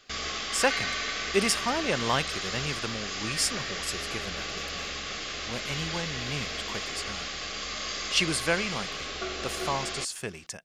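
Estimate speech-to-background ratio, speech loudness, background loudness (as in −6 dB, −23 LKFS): 1.5 dB, −31.0 LKFS, −32.5 LKFS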